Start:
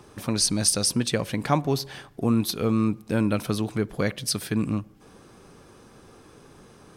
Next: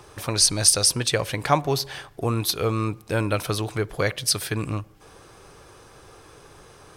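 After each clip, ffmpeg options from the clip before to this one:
-af "equalizer=f=220:t=o:w=0.92:g=-14.5,volume=5dB"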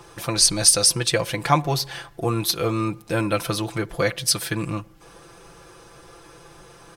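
-af "aecho=1:1:5.9:0.69"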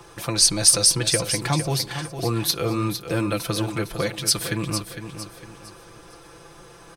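-filter_complex "[0:a]acrossover=split=400|3000[a][b][c];[b]acompressor=threshold=-27dB:ratio=6[d];[a][d][c]amix=inputs=3:normalize=0,asplit=2[e][f];[f]aecho=0:1:456|912|1368|1824:0.335|0.121|0.0434|0.0156[g];[e][g]amix=inputs=2:normalize=0"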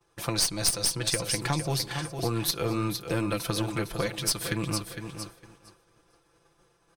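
-af "aeval=exprs='0.891*(cos(1*acos(clip(val(0)/0.891,-1,1)))-cos(1*PI/2))+0.0794*(cos(3*acos(clip(val(0)/0.891,-1,1)))-cos(3*PI/2))+0.224*(cos(4*acos(clip(val(0)/0.891,-1,1)))-cos(4*PI/2))+0.0562*(cos(6*acos(clip(val(0)/0.891,-1,1)))-cos(6*PI/2))':c=same,agate=range=-33dB:threshold=-37dB:ratio=3:detection=peak,acompressor=threshold=-24dB:ratio=3"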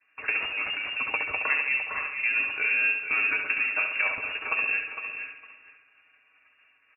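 -filter_complex "[0:a]afreqshift=280,asplit=2[a][b];[b]aecho=0:1:69|138|207|276|345|414:0.501|0.236|0.111|0.052|0.0245|0.0115[c];[a][c]amix=inputs=2:normalize=0,lowpass=f=2.6k:t=q:w=0.5098,lowpass=f=2.6k:t=q:w=0.6013,lowpass=f=2.6k:t=q:w=0.9,lowpass=f=2.6k:t=q:w=2.563,afreqshift=-3100,volume=2dB"

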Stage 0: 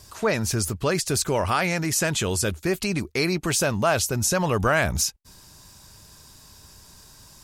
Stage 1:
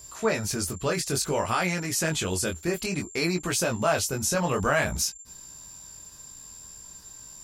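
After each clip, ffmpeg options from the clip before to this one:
-af "aeval=exprs='val(0)+0.01*sin(2*PI*7300*n/s)':c=same,flanger=delay=16.5:depth=6.6:speed=0.57,equalizer=f=100:t=o:w=0.8:g=-4"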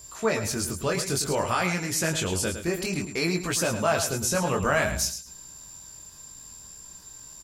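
-af "aecho=1:1:108|216|324:0.335|0.0703|0.0148"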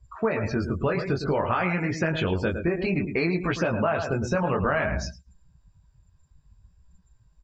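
-af "lowpass=2.6k,afftdn=nr=27:nf=-42,acompressor=threshold=-28dB:ratio=6,volume=7dB"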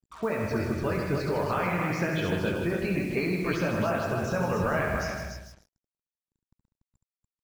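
-filter_complex "[0:a]asplit=2[a][b];[b]aecho=0:1:156|312|468:0.422|0.0843|0.0169[c];[a][c]amix=inputs=2:normalize=0,acrusher=bits=6:mix=0:aa=0.5,asplit=2[d][e];[e]aecho=0:1:69.97|288.6:0.501|0.562[f];[d][f]amix=inputs=2:normalize=0,volume=-5dB"

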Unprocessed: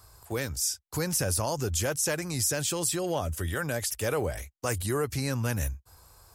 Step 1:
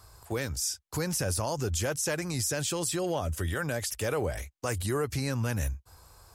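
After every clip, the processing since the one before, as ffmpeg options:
-filter_complex "[0:a]highshelf=f=11k:g=-7.5,asplit=2[a][b];[b]alimiter=level_in=1dB:limit=-24dB:level=0:latency=1:release=112,volume=-1dB,volume=1dB[c];[a][c]amix=inputs=2:normalize=0,volume=-5dB"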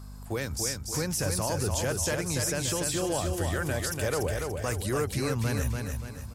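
-filter_complex "[0:a]aeval=exprs='val(0)+0.00794*(sin(2*PI*50*n/s)+sin(2*PI*2*50*n/s)/2+sin(2*PI*3*50*n/s)/3+sin(2*PI*4*50*n/s)/4+sin(2*PI*5*50*n/s)/5)':c=same,asplit=2[a][b];[b]aecho=0:1:289|578|867|1156|1445:0.596|0.256|0.11|0.0474|0.0204[c];[a][c]amix=inputs=2:normalize=0"

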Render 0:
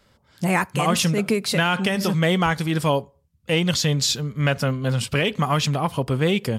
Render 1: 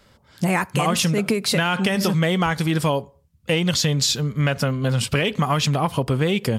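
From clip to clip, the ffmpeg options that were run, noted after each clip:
-af "acompressor=threshold=-21dB:ratio=6,volume=4.5dB"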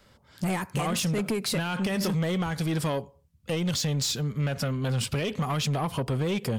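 -filter_complex "[0:a]acrossover=split=530|6700[a][b][c];[b]alimiter=limit=-16dB:level=0:latency=1:release=94[d];[a][d][c]amix=inputs=3:normalize=0,asoftclip=type=tanh:threshold=-18dB,volume=-3.5dB"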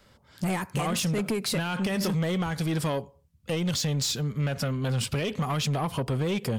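-af anull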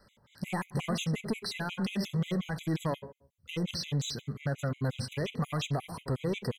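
-filter_complex "[0:a]acrossover=split=5800[a][b];[b]acompressor=threshold=-43dB:ratio=4:attack=1:release=60[c];[a][c]amix=inputs=2:normalize=0,asplit=2[d][e];[e]adelay=69,lowpass=f=1.8k:p=1,volume=-13dB,asplit=2[f][g];[g]adelay=69,lowpass=f=1.8k:p=1,volume=0.45,asplit=2[h][i];[i]adelay=69,lowpass=f=1.8k:p=1,volume=0.45,asplit=2[j][k];[k]adelay=69,lowpass=f=1.8k:p=1,volume=0.45[l];[d][f][h][j][l]amix=inputs=5:normalize=0,afftfilt=real='re*gt(sin(2*PI*5.6*pts/sr)*(1-2*mod(floor(b*sr/1024/2000),2)),0)':imag='im*gt(sin(2*PI*5.6*pts/sr)*(1-2*mod(floor(b*sr/1024/2000),2)),0)':win_size=1024:overlap=0.75,volume=-2.5dB"

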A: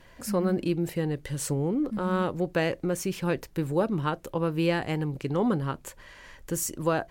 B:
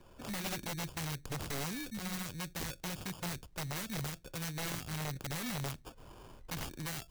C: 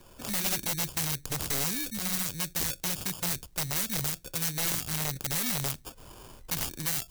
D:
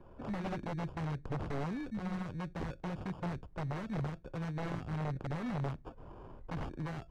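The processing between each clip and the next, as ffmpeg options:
-filter_complex "[0:a]acrusher=samples=22:mix=1:aa=0.000001,acrossover=split=170|3000[a][b][c];[b]acompressor=threshold=-40dB:ratio=8[d];[a][d][c]amix=inputs=3:normalize=0,aeval=exprs='(mod(25.1*val(0)+1,2)-1)/25.1':c=same,volume=-4.5dB"
-af "highshelf=f=4.5k:g=12,volume=3.5dB"
-af "lowpass=1.1k"

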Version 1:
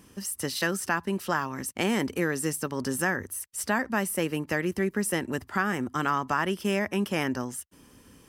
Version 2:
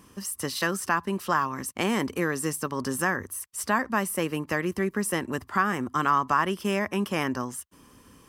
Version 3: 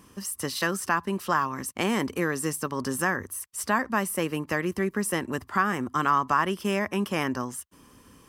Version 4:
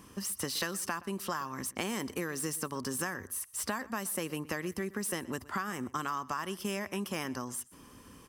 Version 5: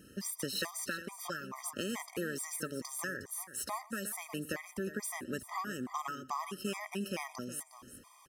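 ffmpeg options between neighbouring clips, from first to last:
-af "equalizer=f=1.1k:t=o:w=0.33:g=8.5"
-af anull
-filter_complex "[0:a]acrossover=split=4200[a][b];[a]acompressor=threshold=-33dB:ratio=5[c];[b]asoftclip=type=hard:threshold=-33dB[d];[c][d]amix=inputs=2:normalize=0,asplit=2[e][f];[f]adelay=122.4,volume=-20dB,highshelf=f=4k:g=-2.76[g];[e][g]amix=inputs=2:normalize=0"
-af "lowshelf=f=140:g=-5,aecho=1:1:360:0.237,afftfilt=real='re*gt(sin(2*PI*2.3*pts/sr)*(1-2*mod(floor(b*sr/1024/630),2)),0)':imag='im*gt(sin(2*PI*2.3*pts/sr)*(1-2*mod(floor(b*sr/1024/630),2)),0)':win_size=1024:overlap=0.75"

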